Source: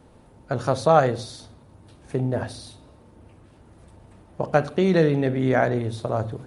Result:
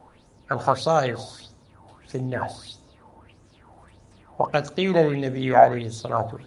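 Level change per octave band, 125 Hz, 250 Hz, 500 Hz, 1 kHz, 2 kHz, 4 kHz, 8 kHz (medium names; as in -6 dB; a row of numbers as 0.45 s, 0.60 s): -4.0 dB, -3.5 dB, 0.0 dB, +3.5 dB, 0.0 dB, +3.0 dB, +0.5 dB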